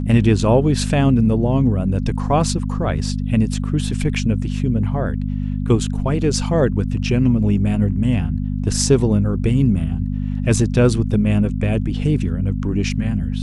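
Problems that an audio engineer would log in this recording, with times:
hum 50 Hz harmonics 5 -22 dBFS

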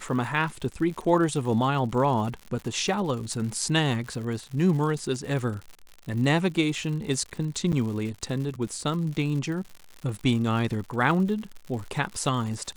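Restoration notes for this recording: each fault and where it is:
crackle 120/s -34 dBFS
7.72–7.73 gap 8.2 ms

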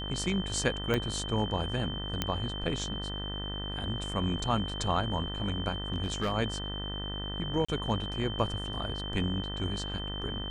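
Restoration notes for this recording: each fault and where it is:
buzz 50 Hz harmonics 39 -38 dBFS
tone 3100 Hz -38 dBFS
0.94 pop -15 dBFS
2.22 pop -13 dBFS
5.93–6.32 clipped -25 dBFS
7.65–7.68 gap 35 ms

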